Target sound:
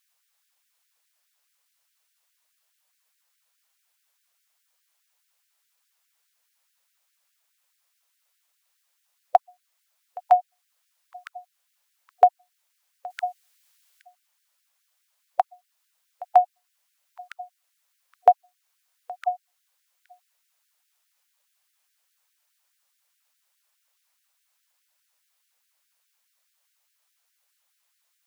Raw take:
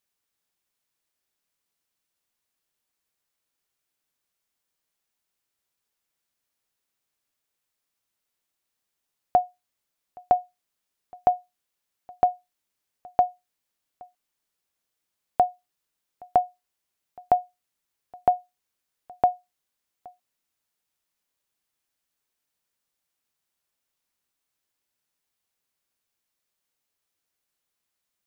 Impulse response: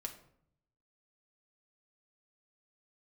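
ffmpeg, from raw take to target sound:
-filter_complex "[0:a]asettb=1/sr,asplit=3[link_01][link_02][link_03];[link_01]atrim=end=13.104[link_04];[link_02]atrim=start=13.1:end=14.02,asetpts=PTS-STARTPTS,afade=type=in:duration=0.004:curve=qsin,afade=type=out:start_time=0.916:duration=0.004:curve=qsin,tiltshelf=frequency=740:gain=-8[link_05];[link_03]atrim=start=14.016[link_06];[link_04][link_05]acrossfade=duration=0.004:curve1=hsin:curve2=qsin[link_07];[link_07][link_06]acrossfade=duration=0.004:curve1=qsin:curve2=hsin,asplit=2[link_08][link_09];[link_09]alimiter=limit=-16.5dB:level=0:latency=1:release=470,volume=2dB[link_10];[link_08][link_10]amix=inputs=2:normalize=0,afftfilt=real='re*gte(b*sr/1024,460*pow(1500/460,0.5+0.5*sin(2*PI*4.8*pts/sr)))':imag='im*gte(b*sr/1024,460*pow(1500/460,0.5+0.5*sin(2*PI*4.8*pts/sr)))':win_size=1024:overlap=0.75,volume=2dB"

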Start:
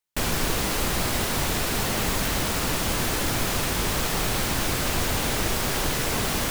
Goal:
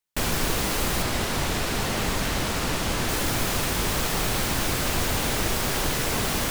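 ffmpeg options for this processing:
ffmpeg -i in.wav -filter_complex "[0:a]asettb=1/sr,asplit=3[link_01][link_02][link_03];[link_01]atrim=end=1.024[link_04];[link_02]atrim=start=1.02:end=3.09,asetpts=PTS-STARTPTS,afade=type=in:duration=0.004:curve=qsin,afade=type=out:start_time=2.066:duration=0.004:curve=qsin,highshelf=frequency=9800:gain=-8[link_05];[link_03]atrim=start=3.086[link_06];[link_04][link_05]acrossfade=duration=0.004:curve1=hsin:curve2=qsin[link_07];[link_07][link_06]acrossfade=duration=0.004:curve1=qsin:curve2=hsin" out.wav

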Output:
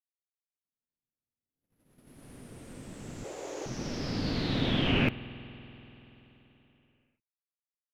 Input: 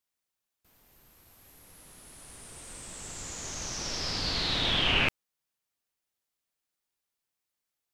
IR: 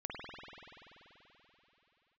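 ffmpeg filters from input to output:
-filter_complex "[0:a]agate=range=-42dB:threshold=-50dB:ratio=16:detection=peak,equalizer=frequency=125:width_type=o:width=1:gain=8,equalizer=frequency=250:width_type=o:width=1:gain=11,equalizer=frequency=500:width_type=o:width=1:gain=4,equalizer=frequency=1000:width_type=o:width=1:gain=-3,equalizer=frequency=4000:width_type=o:width=1:gain=-4,equalizer=frequency=8000:width_type=o:width=1:gain=-11,asettb=1/sr,asplit=3[link_01][link_02][link_03];[link_01]atrim=end=3.244[link_04];[link_02]atrim=start=3.24:end=3.66,asetpts=PTS-STARTPTS,afade=type=in:duration=0.004:curve=qsin,afade=type=out:start_time=0.416:duration=0.004:curve=qsin,afreqshift=280[link_05];[link_03]atrim=start=3.656[link_06];[link_04][link_05]acrossfade=duration=0.004:curve1=hsin:curve2=qsin[link_07];[link_07][link_06]acrossfade=duration=0.004:curve1=qsin:curve2=hsin,asplit=2[link_08][link_09];[1:a]atrim=start_sample=2205[link_10];[link_09][link_10]afir=irnorm=-1:irlink=0,volume=-15dB[link_11];[link_08][link_11]amix=inputs=2:normalize=0,volume=-3.5dB"

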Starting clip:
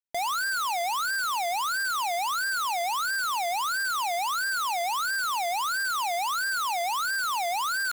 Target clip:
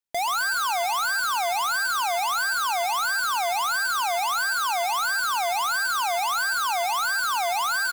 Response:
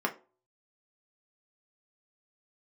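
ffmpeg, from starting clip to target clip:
-filter_complex "[0:a]asettb=1/sr,asplit=3[link_01][link_02][link_03];[link_01]atrim=end=4.494[link_04];[link_02]atrim=start=4.49:end=4.9,asetpts=PTS-STARTPTS,afade=type=in:duration=0.004:curve=qsin,afade=type=out:start_time=0.406:duration=0.004:curve=qsin,highpass=100[link_05];[link_03]atrim=start=4.896[link_06];[link_04][link_05]acrossfade=duration=0.004:curve1=hsin:curve2=qsin[link_07];[link_07][link_06]acrossfade=duration=0.004:curve1=qsin:curve2=hsin,aecho=1:1:131|262|393|524|655:0.251|0.123|0.0603|0.0296|0.0145,volume=3dB"

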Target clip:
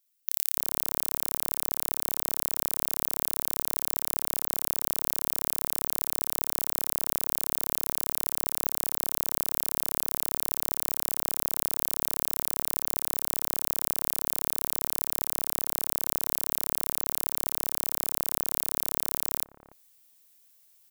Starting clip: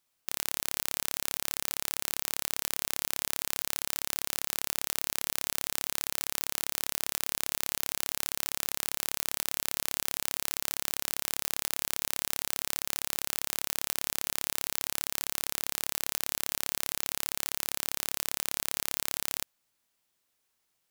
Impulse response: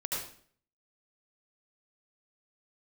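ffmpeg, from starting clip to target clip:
-filter_complex "[0:a]acrossover=split=1200[link_01][link_02];[link_01]adelay=290[link_03];[link_03][link_02]amix=inputs=2:normalize=0,areverse,acompressor=mode=upward:threshold=-53dB:ratio=2.5,areverse,aemphasis=mode=production:type=50kf,volume=-8.5dB"

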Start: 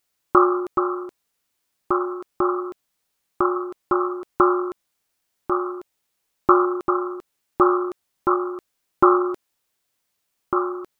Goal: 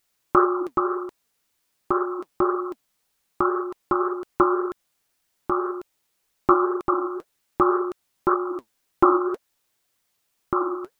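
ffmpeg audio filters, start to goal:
ffmpeg -i in.wav -filter_complex "[0:a]asplit=2[link_01][link_02];[link_02]acompressor=threshold=-26dB:ratio=6,volume=1dB[link_03];[link_01][link_03]amix=inputs=2:normalize=0,flanger=delay=0.5:depth=9:regen=59:speed=1.9:shape=sinusoidal" out.wav

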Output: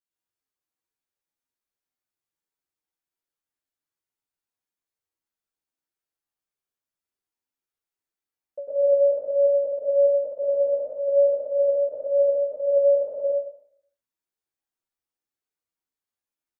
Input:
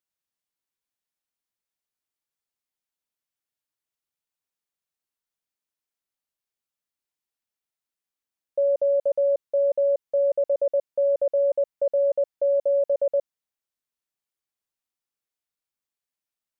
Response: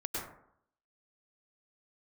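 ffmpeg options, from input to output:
-filter_complex "[1:a]atrim=start_sample=2205[link_01];[0:a][link_01]afir=irnorm=-1:irlink=0,asplit=2[link_02][link_03];[link_03]adelay=10.6,afreqshift=1.8[link_04];[link_02][link_04]amix=inputs=2:normalize=1,volume=-1.5dB"

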